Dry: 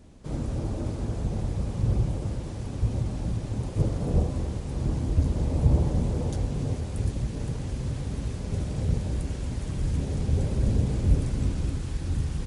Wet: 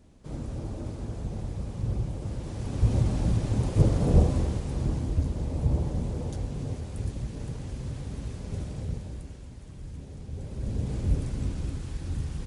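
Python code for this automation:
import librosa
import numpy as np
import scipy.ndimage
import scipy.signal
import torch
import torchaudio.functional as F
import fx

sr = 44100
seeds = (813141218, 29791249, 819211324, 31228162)

y = fx.gain(x, sr, db=fx.line((2.13, -5.0), (2.95, 4.0), (4.29, 4.0), (5.35, -4.5), (8.62, -4.5), (9.54, -13.5), (10.3, -13.5), (10.94, -4.0)))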